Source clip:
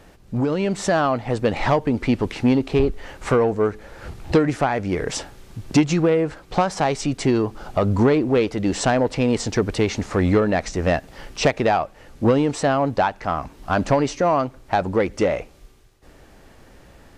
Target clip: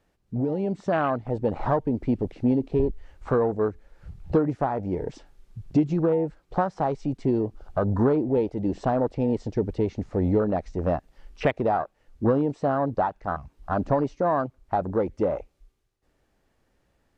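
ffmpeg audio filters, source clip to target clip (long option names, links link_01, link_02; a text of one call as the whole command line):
ffmpeg -i in.wav -filter_complex "[0:a]acrossover=split=6300[link_01][link_02];[link_02]acompressor=threshold=-53dB:ratio=4:attack=1:release=60[link_03];[link_01][link_03]amix=inputs=2:normalize=0,afwtdn=0.0708,volume=-4.5dB" out.wav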